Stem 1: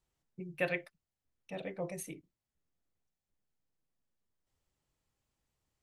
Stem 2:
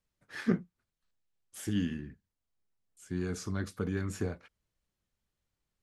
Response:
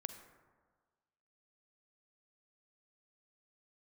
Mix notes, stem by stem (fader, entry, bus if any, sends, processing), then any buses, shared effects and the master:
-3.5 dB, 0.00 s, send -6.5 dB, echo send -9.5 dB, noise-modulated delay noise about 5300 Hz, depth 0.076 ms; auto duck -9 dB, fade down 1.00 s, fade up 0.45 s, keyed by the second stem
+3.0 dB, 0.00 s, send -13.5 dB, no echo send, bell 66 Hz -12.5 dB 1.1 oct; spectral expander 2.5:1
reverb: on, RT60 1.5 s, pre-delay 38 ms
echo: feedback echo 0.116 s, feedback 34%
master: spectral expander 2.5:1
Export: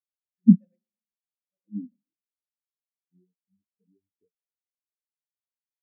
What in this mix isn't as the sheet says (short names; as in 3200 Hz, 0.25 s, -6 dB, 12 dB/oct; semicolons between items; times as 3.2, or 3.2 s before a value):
stem 2 +3.0 dB -> +9.5 dB; reverb return +8.5 dB